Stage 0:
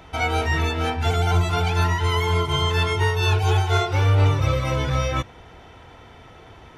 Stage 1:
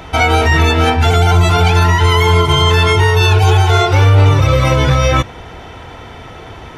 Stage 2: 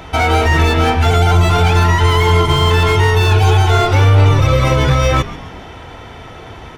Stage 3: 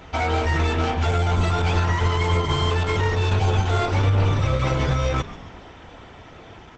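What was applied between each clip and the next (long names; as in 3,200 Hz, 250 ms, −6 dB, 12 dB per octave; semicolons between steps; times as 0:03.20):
boost into a limiter +14 dB; level −1 dB
echo with shifted repeats 134 ms, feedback 51%, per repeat −110 Hz, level −17 dB; slew-rate limiting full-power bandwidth 420 Hz; level −1 dB
level −8.5 dB; Opus 12 kbit/s 48,000 Hz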